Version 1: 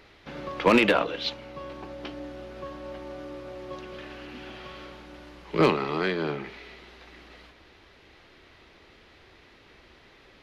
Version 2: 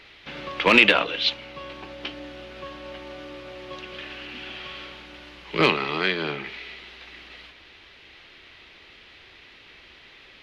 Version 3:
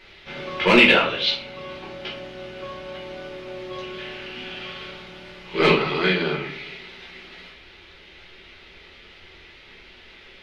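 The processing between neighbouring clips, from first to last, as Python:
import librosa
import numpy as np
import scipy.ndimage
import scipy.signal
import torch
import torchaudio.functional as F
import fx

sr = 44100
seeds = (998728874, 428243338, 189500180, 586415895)

y1 = fx.peak_eq(x, sr, hz=2900.0, db=12.0, octaves=1.7)
y1 = y1 * 10.0 ** (-1.5 / 20.0)
y2 = fx.room_shoebox(y1, sr, seeds[0], volume_m3=41.0, walls='mixed', distance_m=1.1)
y2 = y2 * 10.0 ** (-4.0 / 20.0)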